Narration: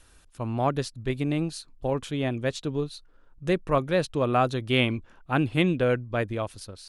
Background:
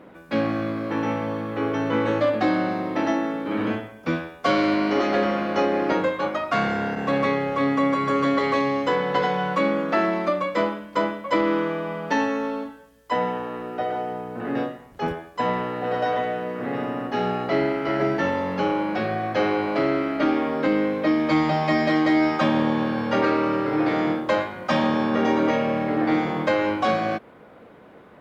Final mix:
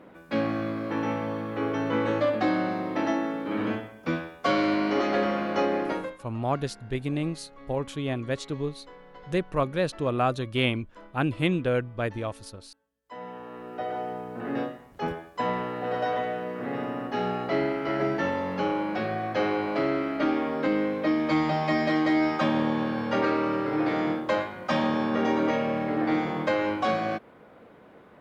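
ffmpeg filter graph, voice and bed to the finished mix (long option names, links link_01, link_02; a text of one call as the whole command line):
ffmpeg -i stem1.wav -i stem2.wav -filter_complex "[0:a]adelay=5850,volume=-2dB[link_01];[1:a]volume=19dB,afade=type=out:start_time=5.73:duration=0.49:silence=0.0707946,afade=type=in:start_time=13.02:duration=1.03:silence=0.0749894[link_02];[link_01][link_02]amix=inputs=2:normalize=0" out.wav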